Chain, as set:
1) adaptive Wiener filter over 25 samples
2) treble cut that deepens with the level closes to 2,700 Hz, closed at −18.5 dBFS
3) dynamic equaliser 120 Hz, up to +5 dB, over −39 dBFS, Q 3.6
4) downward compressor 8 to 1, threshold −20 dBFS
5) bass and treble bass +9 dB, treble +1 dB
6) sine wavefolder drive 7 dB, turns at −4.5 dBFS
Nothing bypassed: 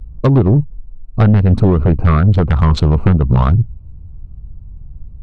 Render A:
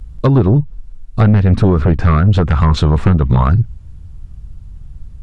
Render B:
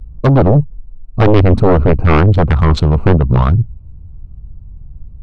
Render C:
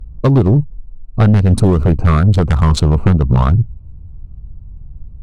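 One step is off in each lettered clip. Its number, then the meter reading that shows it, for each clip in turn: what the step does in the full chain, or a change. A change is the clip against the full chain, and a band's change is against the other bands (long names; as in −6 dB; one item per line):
1, 4 kHz band +2.5 dB
4, average gain reduction 2.5 dB
2, 4 kHz band +3.0 dB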